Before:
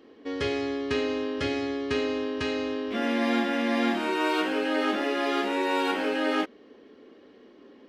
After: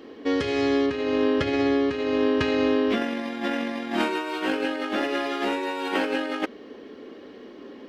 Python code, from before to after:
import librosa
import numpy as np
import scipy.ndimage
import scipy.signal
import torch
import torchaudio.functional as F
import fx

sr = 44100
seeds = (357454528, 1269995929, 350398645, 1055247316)

y = fx.high_shelf(x, sr, hz=4900.0, db=-10.5, at=(0.86, 2.9))
y = fx.over_compress(y, sr, threshold_db=-30.0, ratio=-0.5)
y = y * librosa.db_to_amplitude(6.0)